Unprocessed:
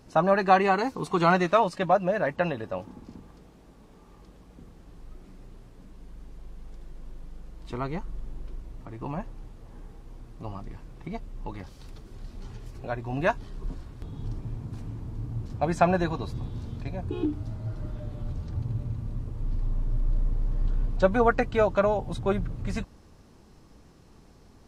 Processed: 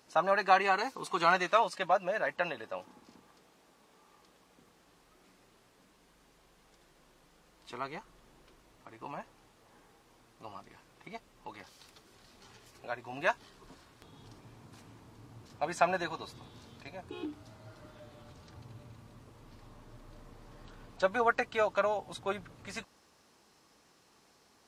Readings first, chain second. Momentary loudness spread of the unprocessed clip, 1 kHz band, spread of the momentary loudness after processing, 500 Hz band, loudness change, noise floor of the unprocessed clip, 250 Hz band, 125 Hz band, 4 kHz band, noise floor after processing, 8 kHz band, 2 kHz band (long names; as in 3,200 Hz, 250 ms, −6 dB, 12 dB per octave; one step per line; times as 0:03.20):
21 LU, −4.5 dB, 22 LU, −7.5 dB, −4.0 dB, −54 dBFS, −14.0 dB, −19.5 dB, −0.5 dB, −66 dBFS, 0.0 dB, −2.0 dB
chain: high-pass filter 1,200 Hz 6 dB per octave